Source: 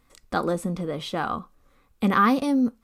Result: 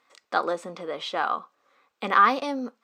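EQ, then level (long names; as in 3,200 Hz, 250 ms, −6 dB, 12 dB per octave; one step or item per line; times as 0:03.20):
moving average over 4 samples
high-pass filter 570 Hz 12 dB per octave
+3.0 dB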